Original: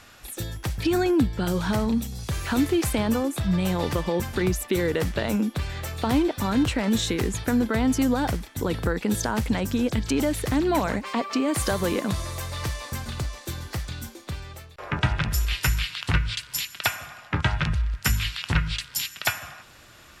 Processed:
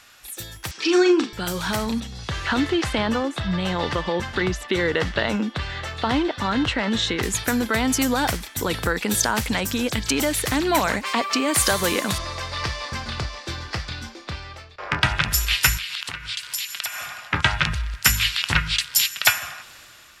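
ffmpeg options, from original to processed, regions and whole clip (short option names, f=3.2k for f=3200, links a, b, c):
-filter_complex "[0:a]asettb=1/sr,asplit=3[a][b][c];[a]atrim=end=0.714[d];[b]atrim=start=0.71:end=1.33,asetpts=PTS-STARTPTS,afade=t=in:d=0.004:c=qsin,afade=t=out:st=0.616:d=0.004:c=qsin,highpass=f=260:w=0.5412,highpass=f=260:w=1.3066,equalizer=f=370:t=q:w=4:g=9,equalizer=f=630:t=q:w=4:g=-6,equalizer=f=1.2k:t=q:w=4:g=7,equalizer=f=2.8k:t=q:w=4:g=4,equalizer=f=5.6k:t=q:w=4:g=7,lowpass=f=7.2k:w=0.5412,lowpass=f=7.2k:w=1.3066,asplit=2[e][f];[f]adelay=39,volume=-6.5dB[g];[e][g]amix=inputs=2:normalize=0,atrim=end_sample=27342[h];[c]atrim=start=1.326[i];[d][h]acrossfade=d=0.004:c1=hsin:c2=qsin[j];[j][i]acrossfade=d=0.004:c1=qsin:c2=hsin,asettb=1/sr,asplit=3[k][l][m];[k]atrim=end=2.004[n];[l]atrim=start=2:end=7.23,asetpts=PTS-STARTPTS,afade=t=in:d=0.004:c=qsin,afade=t=out:st=5.226:d=0.004:c=qsin,lowpass=3.6k,bandreject=f=2.4k:w=9.6[o];[m]atrim=start=7.226[p];[n][o]acrossfade=d=0.004:c1=hsin:c2=qsin[q];[q][p]acrossfade=d=0.004:c1=qsin:c2=hsin,asettb=1/sr,asplit=3[r][s][t];[r]atrim=end=12.184[u];[s]atrim=start=12.18:end=15.04,asetpts=PTS-STARTPTS,afade=t=in:d=0.004:c=qsin,afade=t=out:st=2.856:d=0.004:c=qsin,adynamicsmooth=sensitivity=1:basefreq=3.1k,equalizer=f=5k:t=o:w=0.45:g=8,asplit=2[v][w];[w]adelay=27,volume=-11dB[x];[v][x]amix=inputs=2:normalize=0,atrim=end_sample=126126[y];[t]atrim=start=15.036[z];[u][y]acrossfade=d=0.004:c1=hsin:c2=qsin[aa];[aa][z]acrossfade=d=0.004:c1=qsin:c2=hsin,asettb=1/sr,asplit=3[ab][ac][ad];[ab]atrim=end=15.774[ae];[ac]atrim=start=15.77:end=17.06,asetpts=PTS-STARTPTS,afade=t=in:d=0.004:c=qsin,afade=t=out:st=1.286:d=0.004:c=qsin,lowshelf=f=150:g=-10.5,acompressor=threshold=-34dB:ratio=8:attack=3.2:release=140:knee=1:detection=peak[af];[ad]atrim=start=17.056[ag];[ae][af]acrossfade=d=0.004:c1=hsin:c2=qsin[ah];[ah][ag]acrossfade=d=0.004:c1=qsin:c2=hsin,dynaudnorm=f=250:g=5:m=9.5dB,tiltshelf=f=800:g=-6,volume=-4dB"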